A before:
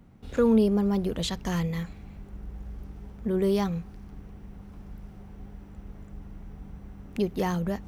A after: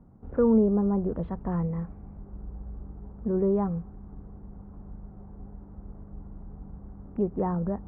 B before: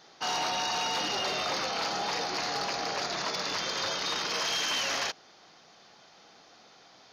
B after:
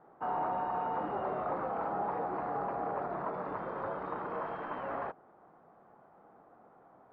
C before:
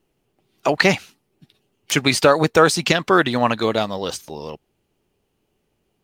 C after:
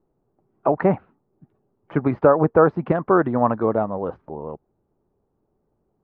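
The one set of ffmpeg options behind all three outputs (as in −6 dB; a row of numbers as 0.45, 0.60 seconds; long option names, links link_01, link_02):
-af "lowpass=frequency=1200:width=0.5412,lowpass=frequency=1200:width=1.3066"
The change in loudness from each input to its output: 0.0, −6.5, −2.0 LU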